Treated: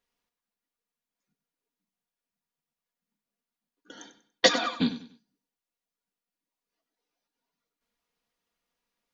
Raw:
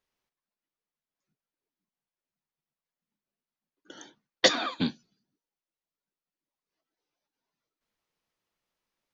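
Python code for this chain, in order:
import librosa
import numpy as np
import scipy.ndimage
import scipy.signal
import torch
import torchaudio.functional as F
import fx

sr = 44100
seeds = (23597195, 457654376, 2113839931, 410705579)

p1 = x + 0.49 * np.pad(x, (int(4.2 * sr / 1000.0), 0))[:len(x)]
y = p1 + fx.echo_feedback(p1, sr, ms=96, feedback_pct=31, wet_db=-13, dry=0)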